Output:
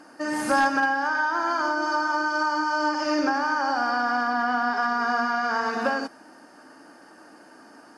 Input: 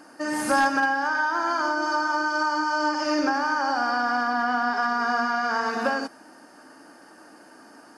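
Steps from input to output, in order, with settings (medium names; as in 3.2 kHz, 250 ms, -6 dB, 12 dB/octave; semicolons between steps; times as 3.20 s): treble shelf 9.3 kHz -7 dB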